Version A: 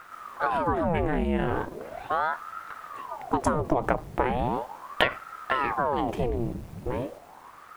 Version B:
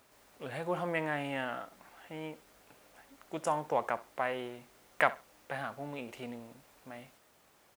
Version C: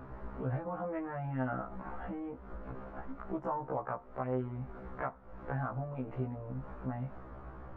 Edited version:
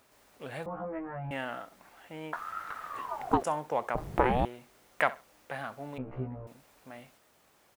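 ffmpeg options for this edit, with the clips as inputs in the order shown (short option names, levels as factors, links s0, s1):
-filter_complex "[2:a]asplit=2[s0][s1];[0:a]asplit=2[s2][s3];[1:a]asplit=5[s4][s5][s6][s7][s8];[s4]atrim=end=0.662[s9];[s0]atrim=start=0.658:end=1.312[s10];[s5]atrim=start=1.308:end=2.332[s11];[s2]atrim=start=2.328:end=3.432[s12];[s6]atrim=start=3.428:end=3.952[s13];[s3]atrim=start=3.948:end=4.452[s14];[s7]atrim=start=4.448:end=5.982[s15];[s1]atrim=start=5.978:end=6.472[s16];[s8]atrim=start=6.468[s17];[s9][s10]acrossfade=d=0.004:c1=hsin:c2=hsin[s18];[s18][s11]acrossfade=d=0.004:c1=hsin:c2=hsin[s19];[s19][s12]acrossfade=d=0.004:c1=hsin:c2=hsin[s20];[s20][s13]acrossfade=d=0.004:c1=hsin:c2=hsin[s21];[s21][s14]acrossfade=d=0.004:c1=hsin:c2=hsin[s22];[s22][s15]acrossfade=d=0.004:c1=hsin:c2=hsin[s23];[s23][s16]acrossfade=d=0.004:c1=hsin:c2=hsin[s24];[s24][s17]acrossfade=d=0.004:c1=hsin:c2=hsin"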